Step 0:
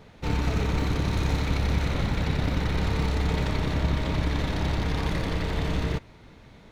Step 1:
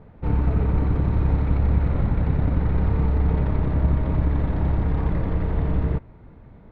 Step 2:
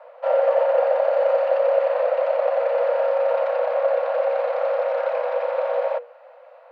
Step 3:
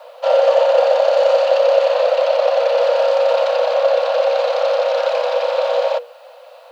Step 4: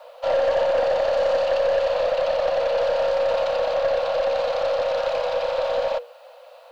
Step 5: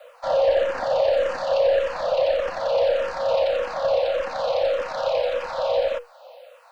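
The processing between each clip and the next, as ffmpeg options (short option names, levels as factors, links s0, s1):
-af "lowpass=1300,lowshelf=f=180:g=7"
-af "afreqshift=480,asubboost=boost=8.5:cutoff=160,volume=1.26"
-af "aexciter=amount=5.7:drive=7.8:freq=3000,volume=1.88"
-af "aeval=exprs='(tanh(3.16*val(0)+0.15)-tanh(0.15))/3.16':c=same,volume=0.596"
-filter_complex "[0:a]asplit=2[s0][s1];[s1]afreqshift=-1.7[s2];[s0][s2]amix=inputs=2:normalize=1,volume=1.33"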